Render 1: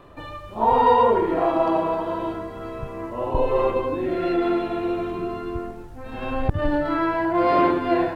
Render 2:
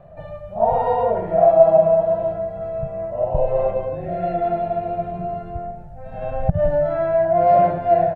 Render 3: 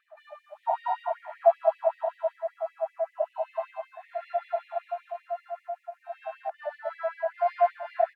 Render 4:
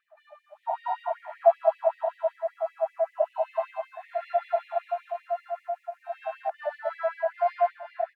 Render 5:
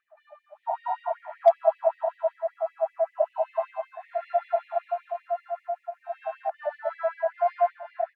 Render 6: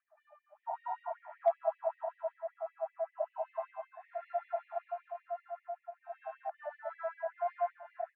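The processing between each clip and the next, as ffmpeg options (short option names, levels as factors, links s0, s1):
-af "firequalizer=gain_entry='entry(110,0);entry(170,9);entry(260,-18);entry(430,-10);entry(640,11);entry(1000,-14);entry(1500,-8);entry(2100,-10);entry(3300,-17)':delay=0.05:min_phase=1,volume=1.26"
-filter_complex "[0:a]asplit=2[s0][s1];[s1]adelay=1108,volume=0.398,highshelf=f=4000:g=-24.9[s2];[s0][s2]amix=inputs=2:normalize=0,afftfilt=real='re*gte(b*sr/1024,580*pow(1900/580,0.5+0.5*sin(2*PI*5.2*pts/sr)))':imag='im*gte(b*sr/1024,580*pow(1900/580,0.5+0.5*sin(2*PI*5.2*pts/sr)))':win_size=1024:overlap=0.75,volume=0.668"
-af "dynaudnorm=f=150:g=11:m=2.82,volume=0.531"
-af "highshelf=f=2600:g=-10,asoftclip=type=hard:threshold=0.335,volume=1.19"
-af "highpass=740,lowpass=2100,volume=0.447"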